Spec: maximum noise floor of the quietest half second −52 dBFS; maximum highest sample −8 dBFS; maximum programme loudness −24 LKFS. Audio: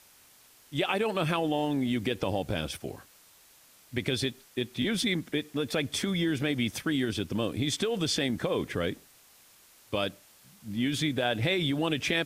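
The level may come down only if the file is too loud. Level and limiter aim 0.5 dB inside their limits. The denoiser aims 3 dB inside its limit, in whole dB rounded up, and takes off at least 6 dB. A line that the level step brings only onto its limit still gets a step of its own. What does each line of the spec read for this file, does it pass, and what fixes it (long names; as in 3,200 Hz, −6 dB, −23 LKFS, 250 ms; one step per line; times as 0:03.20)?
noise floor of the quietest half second −58 dBFS: in spec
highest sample −13.0 dBFS: in spec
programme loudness −30.0 LKFS: in spec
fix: no processing needed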